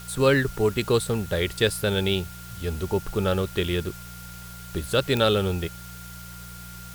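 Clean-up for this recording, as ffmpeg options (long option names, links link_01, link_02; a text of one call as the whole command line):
ffmpeg -i in.wav -af "adeclick=threshold=4,bandreject=frequency=59.2:width_type=h:width=4,bandreject=frequency=118.4:width_type=h:width=4,bandreject=frequency=177.6:width_type=h:width=4,bandreject=frequency=1400:width=30,afwtdn=0.0056" out.wav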